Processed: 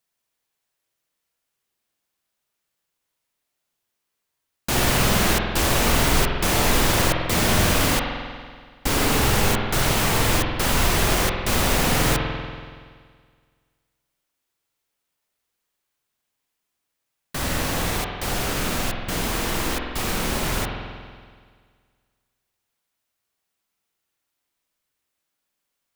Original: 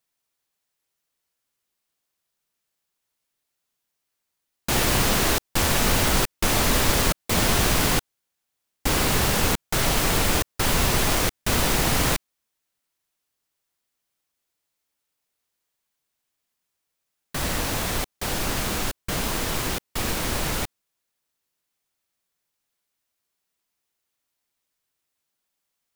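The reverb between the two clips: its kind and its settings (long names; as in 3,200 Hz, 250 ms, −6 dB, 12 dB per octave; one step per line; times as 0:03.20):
spring reverb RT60 1.8 s, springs 47 ms, chirp 65 ms, DRR 1.5 dB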